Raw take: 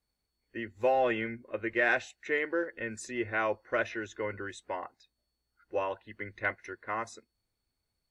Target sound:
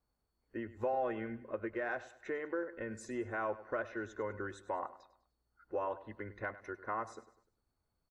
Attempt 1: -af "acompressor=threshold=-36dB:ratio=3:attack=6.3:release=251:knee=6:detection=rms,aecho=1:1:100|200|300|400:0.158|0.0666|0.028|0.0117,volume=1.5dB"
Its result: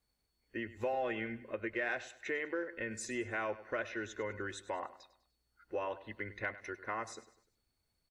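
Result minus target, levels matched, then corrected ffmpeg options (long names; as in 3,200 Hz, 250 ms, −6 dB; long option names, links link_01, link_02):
4,000 Hz band +10.0 dB
-af "acompressor=threshold=-36dB:ratio=3:attack=6.3:release=251:knee=6:detection=rms,highshelf=frequency=1700:width_type=q:width=1.5:gain=-9,aecho=1:1:100|200|300|400:0.158|0.0666|0.028|0.0117,volume=1.5dB"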